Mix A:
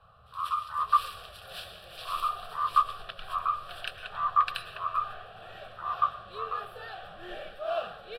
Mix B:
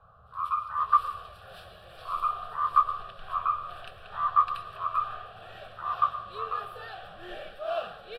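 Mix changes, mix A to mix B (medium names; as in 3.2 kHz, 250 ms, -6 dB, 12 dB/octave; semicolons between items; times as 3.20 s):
speech: send +9.0 dB; first sound -11.5 dB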